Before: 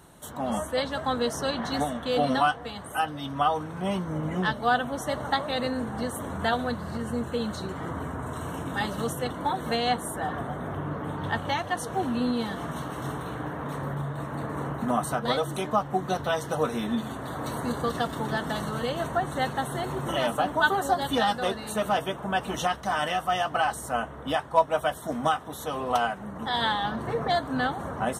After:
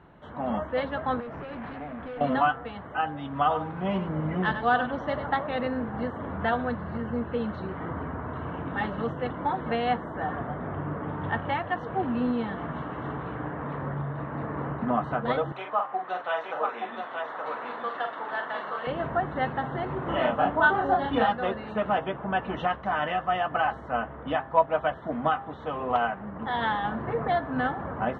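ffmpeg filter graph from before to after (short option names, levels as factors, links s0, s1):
-filter_complex "[0:a]asettb=1/sr,asplit=3[s0][s1][s2];[s0]atrim=end=1.204[s3];[s1]atrim=start=1.2:end=2.21,asetpts=PTS-STARTPTS,afade=t=in:d=0.004:c=qsin,afade=t=out:st=1.006:d=0.004:c=qsin,bass=f=250:g=2,treble=f=4000:g=-14,acompressor=threshold=0.0398:ratio=6:attack=3.2:release=140:knee=1:detection=peak,asoftclip=type=hard:threshold=0.0178[s4];[s2]atrim=start=2.206[s5];[s3][s4]acrossfade=d=0.004:c1=hsin:c2=qsin[s6];[s6][s5]acrossfade=d=0.004:c1=qsin:c2=hsin,asettb=1/sr,asplit=3[s7][s8][s9];[s7]atrim=end=3.334[s10];[s8]atrim=start=3.33:end=5.26,asetpts=PTS-STARTPTS,afade=t=in:d=0.004:c=qsin,afade=t=out:st=1.926:d=0.004:c=qsin,lowpass=f=5200:t=q:w=2.5,aecho=1:1:96:0.316,atrim=end_sample=85113[s11];[s9]atrim=start=5.256[s12];[s10][s11]acrossfade=d=0.004:c1=hsin:c2=qsin[s13];[s13][s12]acrossfade=d=0.004:c1=qsin:c2=hsin,asettb=1/sr,asplit=3[s14][s15][s16];[s14]atrim=end=15.524[s17];[s15]atrim=start=15.52:end=18.87,asetpts=PTS-STARTPTS,afade=t=in:d=0.004:c=qsin,afade=t=out:st=3.346:d=0.004:c=qsin,highpass=700,aecho=1:1:44|875:0.501|0.631,atrim=end_sample=147735[s18];[s16]atrim=start=18.866[s19];[s17][s18]acrossfade=d=0.004:c1=hsin:c2=qsin[s20];[s20][s19]acrossfade=d=0.004:c1=qsin:c2=hsin,asettb=1/sr,asplit=3[s21][s22][s23];[s21]atrim=end=19.984[s24];[s22]atrim=start=19.98:end=21.29,asetpts=PTS-STARTPTS,afade=t=in:d=0.004:c=qsin,afade=t=out:st=1.306:d=0.004:c=qsin,lowpass=f=3000:p=1,aemphasis=mode=production:type=cd,asplit=2[s25][s26];[s26]adelay=32,volume=0.794[s27];[s25][s27]amix=inputs=2:normalize=0,atrim=end_sample=57771[s28];[s23]atrim=start=21.286[s29];[s24][s28]acrossfade=d=0.004:c1=hsin:c2=qsin[s30];[s30][s29]acrossfade=d=0.004:c1=qsin:c2=hsin,lowpass=f=2600:w=0.5412,lowpass=f=2600:w=1.3066,bandreject=f=133.4:t=h:w=4,bandreject=f=266.8:t=h:w=4,bandreject=f=400.2:t=h:w=4,bandreject=f=533.6:t=h:w=4,bandreject=f=667:t=h:w=4,bandreject=f=800.4:t=h:w=4,bandreject=f=933.8:t=h:w=4,bandreject=f=1067.2:t=h:w=4,bandreject=f=1200.6:t=h:w=4,bandreject=f=1334:t=h:w=4,bandreject=f=1467.4:t=h:w=4,bandreject=f=1600.8:t=h:w=4,bandreject=f=1734.2:t=h:w=4,bandreject=f=1867.6:t=h:w=4"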